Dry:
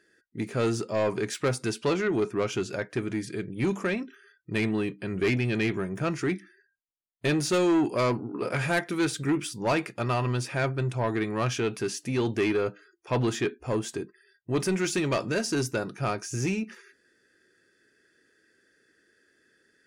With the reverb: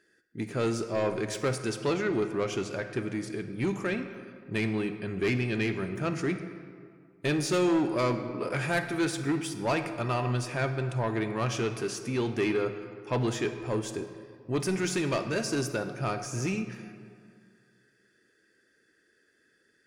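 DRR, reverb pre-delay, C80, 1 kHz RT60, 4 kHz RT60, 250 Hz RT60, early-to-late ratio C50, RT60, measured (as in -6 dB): 8.5 dB, 34 ms, 10.5 dB, 2.1 s, 1.2 s, 2.2 s, 9.0 dB, 2.1 s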